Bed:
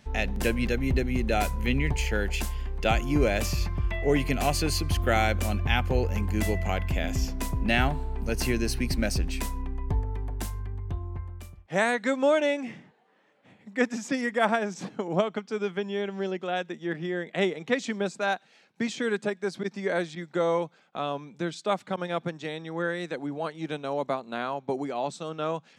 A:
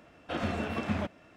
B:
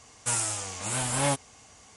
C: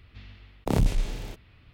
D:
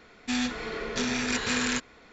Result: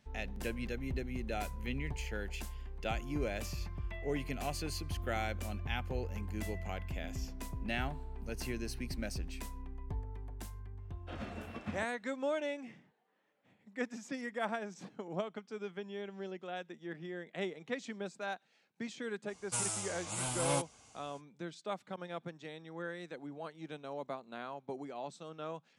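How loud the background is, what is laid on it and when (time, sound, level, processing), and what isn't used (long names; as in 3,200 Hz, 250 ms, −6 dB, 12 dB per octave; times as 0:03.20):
bed −12.5 dB
0:10.78: mix in A −9 dB + expander for the loud parts, over −47 dBFS
0:19.26: mix in B −7.5 dB, fades 0.05 s + notch filter 1,800 Hz, Q 5.3
not used: C, D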